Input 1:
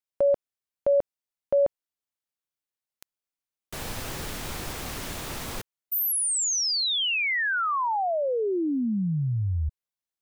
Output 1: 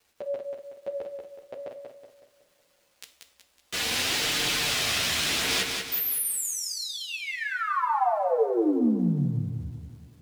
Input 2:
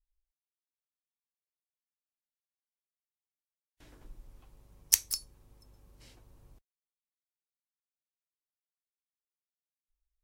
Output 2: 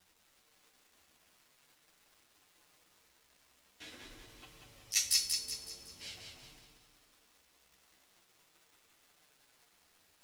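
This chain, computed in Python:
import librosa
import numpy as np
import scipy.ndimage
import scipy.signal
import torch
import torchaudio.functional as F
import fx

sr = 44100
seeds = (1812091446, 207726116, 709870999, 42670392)

p1 = fx.weighting(x, sr, curve='D')
p2 = fx.over_compress(p1, sr, threshold_db=-27.0, ratio=-1.0)
p3 = fx.dmg_crackle(p2, sr, seeds[0], per_s=490.0, level_db=-51.0)
p4 = fx.chorus_voices(p3, sr, voices=2, hz=0.45, base_ms=11, depth_ms=4.5, mix_pct=55)
p5 = p4 + fx.echo_feedback(p4, sr, ms=186, feedback_pct=45, wet_db=-5.0, dry=0)
y = fx.rev_double_slope(p5, sr, seeds[1], early_s=0.49, late_s=3.5, knee_db=-22, drr_db=7.0)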